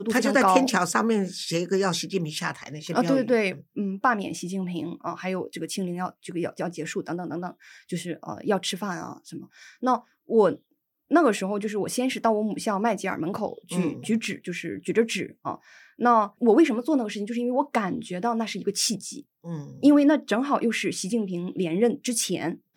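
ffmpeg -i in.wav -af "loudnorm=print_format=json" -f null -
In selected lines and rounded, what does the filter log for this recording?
"input_i" : "-25.2",
"input_tp" : "-3.6",
"input_lra" : "6.8",
"input_thresh" : "-35.5",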